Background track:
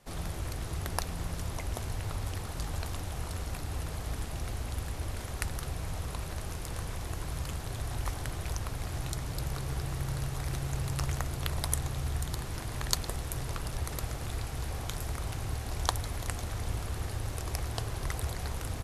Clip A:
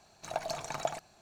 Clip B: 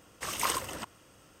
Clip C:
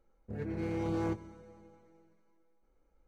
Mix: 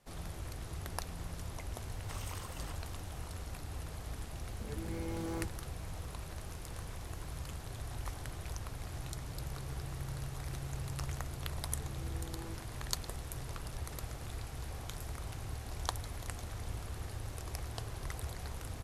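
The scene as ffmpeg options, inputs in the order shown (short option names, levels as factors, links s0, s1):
-filter_complex "[3:a]asplit=2[s0][s1];[0:a]volume=0.447[s2];[2:a]acompressor=threshold=0.00794:ratio=6:attack=3.2:release=140:knee=1:detection=peak[s3];[s0]aemphasis=mode=production:type=50fm[s4];[s3]atrim=end=1.4,asetpts=PTS-STARTPTS,volume=0.668,afade=t=in:d=0.004:c=hsin,afade=t=out:st=1.396:d=0.004:c=hsin,adelay=1880[s5];[s4]atrim=end=3.07,asetpts=PTS-STARTPTS,volume=0.501,afade=t=in:d=0.004:c=hsin,afade=t=out:st=3.066:d=0.004:c=hsin,adelay=4310[s6];[s1]atrim=end=3.07,asetpts=PTS-STARTPTS,volume=0.158,afade=t=in:d=0.004:c=hsin,afade=t=out:st=3.066:d=0.004:c=hsin,adelay=11410[s7];[s2][s5][s6][s7]amix=inputs=4:normalize=0"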